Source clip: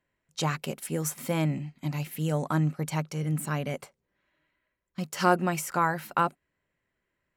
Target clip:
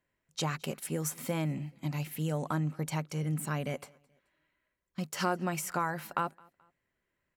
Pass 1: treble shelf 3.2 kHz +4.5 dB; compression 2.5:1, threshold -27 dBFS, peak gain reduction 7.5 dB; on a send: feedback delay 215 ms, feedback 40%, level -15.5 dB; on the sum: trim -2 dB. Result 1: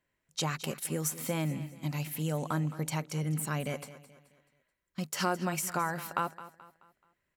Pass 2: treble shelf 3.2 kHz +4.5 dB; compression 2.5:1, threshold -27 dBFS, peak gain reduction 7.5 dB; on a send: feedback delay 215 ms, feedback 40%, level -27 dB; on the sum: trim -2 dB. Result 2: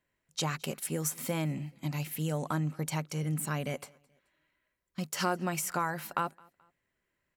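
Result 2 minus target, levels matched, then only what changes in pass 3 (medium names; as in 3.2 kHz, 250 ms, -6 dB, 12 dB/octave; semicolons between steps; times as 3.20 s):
8 kHz band +2.5 dB
remove: treble shelf 3.2 kHz +4.5 dB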